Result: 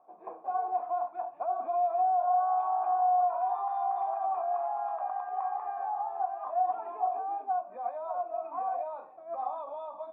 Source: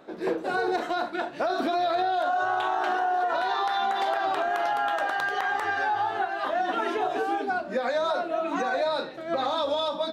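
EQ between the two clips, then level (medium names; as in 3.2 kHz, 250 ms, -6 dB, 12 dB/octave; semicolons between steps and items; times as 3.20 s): treble shelf 2.9 kHz +7.5 dB; dynamic bell 1.7 kHz, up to +4 dB, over -43 dBFS, Q 1.2; cascade formant filter a; 0.0 dB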